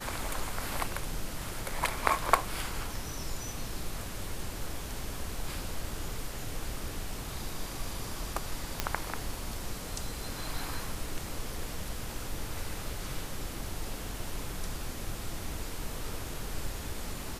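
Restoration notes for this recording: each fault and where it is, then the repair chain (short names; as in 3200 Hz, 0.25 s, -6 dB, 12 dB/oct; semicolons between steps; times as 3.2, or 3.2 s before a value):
8.8 pop -10 dBFS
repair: de-click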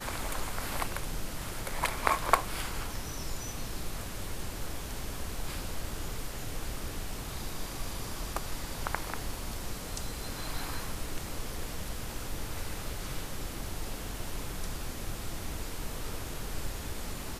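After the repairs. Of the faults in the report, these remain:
none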